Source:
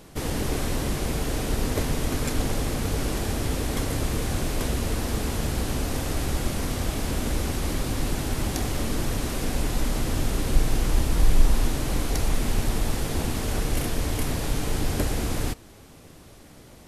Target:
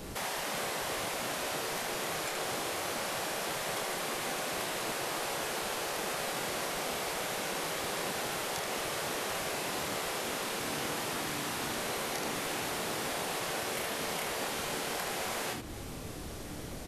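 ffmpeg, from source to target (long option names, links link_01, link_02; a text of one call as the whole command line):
ffmpeg -i in.wav -filter_complex "[0:a]acrossover=split=720|3800[link_01][link_02][link_03];[link_01]acompressor=threshold=-32dB:ratio=4[link_04];[link_02]acompressor=threshold=-44dB:ratio=4[link_05];[link_03]acompressor=threshold=-49dB:ratio=4[link_06];[link_04][link_05][link_06]amix=inputs=3:normalize=0,aecho=1:1:27|77:0.596|0.562,afftfilt=real='re*lt(hypot(re,im),0.0631)':imag='im*lt(hypot(re,im),0.0631)':win_size=1024:overlap=0.75,volume=4.5dB" out.wav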